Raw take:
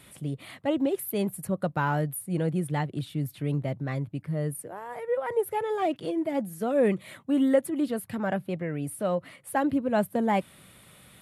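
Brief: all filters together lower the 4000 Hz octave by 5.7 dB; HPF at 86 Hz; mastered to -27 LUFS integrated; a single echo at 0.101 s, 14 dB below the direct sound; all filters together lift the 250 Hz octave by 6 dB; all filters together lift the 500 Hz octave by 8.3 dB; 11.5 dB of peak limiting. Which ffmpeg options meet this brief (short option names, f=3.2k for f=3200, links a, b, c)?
-af "highpass=86,equalizer=f=250:t=o:g=5,equalizer=f=500:t=o:g=8.5,equalizer=f=4k:t=o:g=-8.5,alimiter=limit=-14dB:level=0:latency=1,aecho=1:1:101:0.2,volume=-2.5dB"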